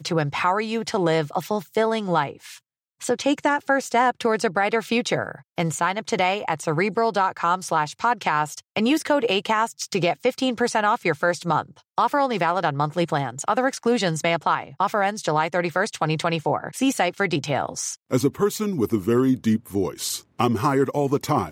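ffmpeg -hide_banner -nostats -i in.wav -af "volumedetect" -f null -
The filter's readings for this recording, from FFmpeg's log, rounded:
mean_volume: -22.9 dB
max_volume: -5.7 dB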